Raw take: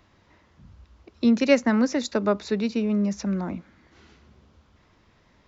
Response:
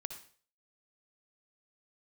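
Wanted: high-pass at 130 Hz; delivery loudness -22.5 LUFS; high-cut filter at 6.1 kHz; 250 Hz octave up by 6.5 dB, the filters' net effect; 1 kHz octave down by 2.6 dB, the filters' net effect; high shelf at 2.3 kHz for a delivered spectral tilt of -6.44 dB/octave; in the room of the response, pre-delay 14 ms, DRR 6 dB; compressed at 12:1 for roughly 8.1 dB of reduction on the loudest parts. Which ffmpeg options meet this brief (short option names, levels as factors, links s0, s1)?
-filter_complex "[0:a]highpass=130,lowpass=6100,equalizer=f=250:t=o:g=8,equalizer=f=1000:t=o:g=-5,highshelf=f=2300:g=5,acompressor=threshold=0.158:ratio=12,asplit=2[s0][s1];[1:a]atrim=start_sample=2205,adelay=14[s2];[s1][s2]afir=irnorm=-1:irlink=0,volume=0.631[s3];[s0][s3]amix=inputs=2:normalize=0,volume=0.841"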